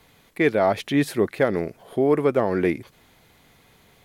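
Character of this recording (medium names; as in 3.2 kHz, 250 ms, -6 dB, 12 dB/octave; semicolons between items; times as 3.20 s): noise floor -58 dBFS; spectral tilt -3.5 dB/octave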